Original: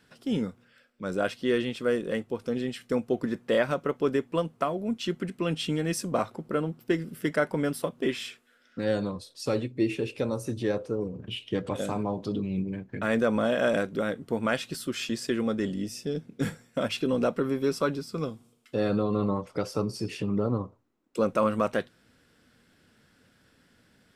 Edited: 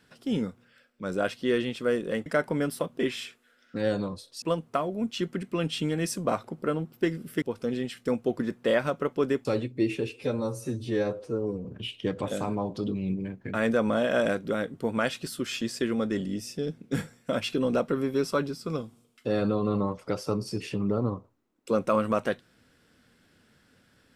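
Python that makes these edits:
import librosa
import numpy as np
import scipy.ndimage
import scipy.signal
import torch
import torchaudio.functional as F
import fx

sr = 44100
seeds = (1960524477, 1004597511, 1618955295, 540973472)

y = fx.edit(x, sr, fx.swap(start_s=2.26, length_s=2.03, other_s=7.29, other_length_s=2.16),
    fx.stretch_span(start_s=10.09, length_s=1.04, factor=1.5), tone=tone)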